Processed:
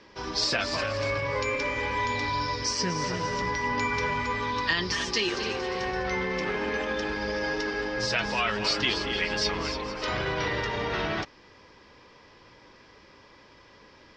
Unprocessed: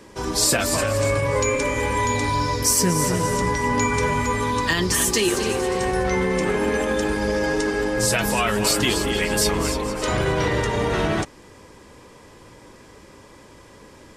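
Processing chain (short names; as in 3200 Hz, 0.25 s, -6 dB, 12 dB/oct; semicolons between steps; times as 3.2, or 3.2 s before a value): elliptic low-pass 5300 Hz, stop band 80 dB; tilt shelf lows -4 dB, about 770 Hz; gain -6 dB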